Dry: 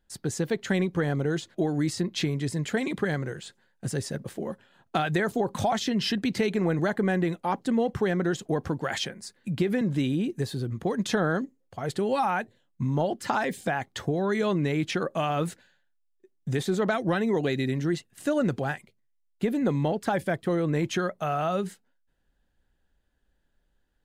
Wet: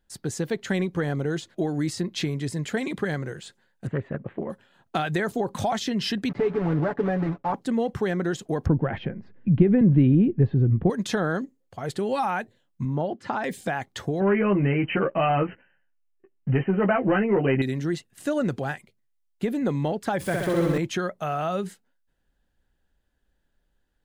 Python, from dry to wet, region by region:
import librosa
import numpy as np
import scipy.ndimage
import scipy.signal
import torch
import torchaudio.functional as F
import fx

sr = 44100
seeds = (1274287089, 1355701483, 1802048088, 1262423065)

y = fx.chain(x, sr, fx.cheby2_lowpass(hz=4900.0, order=4, stop_db=40),
    fx.transient(attack_db=4, sustain_db=0),
    fx.doppler_dist(depth_ms=0.24), at=(3.87, 4.5))
y = fx.chain(y, sr, fx.block_float(bits=3),
    fx.lowpass(hz=1200.0, slope=12),
    fx.comb(ms=7.0, depth=0.69), at=(6.29, 7.54))
y = fx.chain(y, sr, fx.cheby1_lowpass(hz=2700.0, order=3),
    fx.tilt_eq(slope=-4.0), at=(8.66, 10.9))
y = fx.chain(y, sr, fx.highpass(hz=44.0, slope=12),
    fx.spacing_loss(db_at_10k=21), at=(12.85, 13.44))
y = fx.chain(y, sr, fx.doubler(ms=15.0, db=-4.0),
    fx.leveller(passes=1),
    fx.brickwall_lowpass(high_hz=3100.0), at=(14.2, 17.62))
y = fx.chain(y, sr, fx.zero_step(step_db=-36.5),
    fx.notch(hz=640.0, q=9.5),
    fx.room_flutter(wall_m=11.1, rt60_s=1.4), at=(20.2, 20.78))